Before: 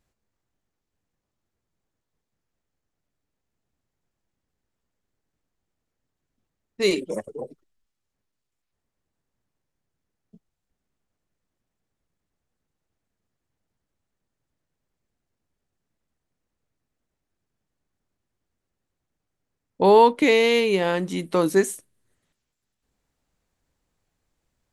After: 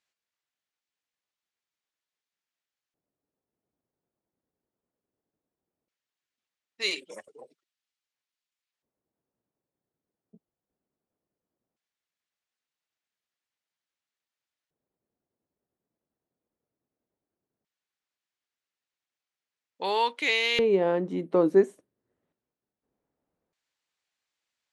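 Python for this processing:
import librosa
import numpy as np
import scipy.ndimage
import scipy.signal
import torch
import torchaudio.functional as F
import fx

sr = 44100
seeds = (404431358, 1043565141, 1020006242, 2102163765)

y = fx.filter_lfo_bandpass(x, sr, shape='square', hz=0.17, low_hz=420.0, high_hz=3300.0, q=0.82)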